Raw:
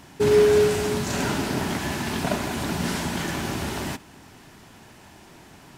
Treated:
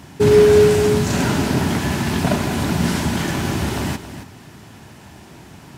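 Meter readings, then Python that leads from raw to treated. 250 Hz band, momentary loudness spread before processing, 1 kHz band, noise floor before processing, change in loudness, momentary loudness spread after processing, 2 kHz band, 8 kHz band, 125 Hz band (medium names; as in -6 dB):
+8.0 dB, 11 LU, +4.5 dB, -49 dBFS, +6.5 dB, 13 LU, +4.5 dB, +4.5 dB, +10.0 dB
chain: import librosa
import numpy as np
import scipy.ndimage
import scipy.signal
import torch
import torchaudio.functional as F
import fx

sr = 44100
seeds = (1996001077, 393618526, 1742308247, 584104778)

p1 = scipy.signal.sosfilt(scipy.signal.butter(2, 83.0, 'highpass', fs=sr, output='sos'), x)
p2 = fx.low_shelf(p1, sr, hz=150.0, db=12.0)
p3 = p2 + fx.echo_single(p2, sr, ms=274, db=-12.0, dry=0)
y = F.gain(torch.from_numpy(p3), 4.0).numpy()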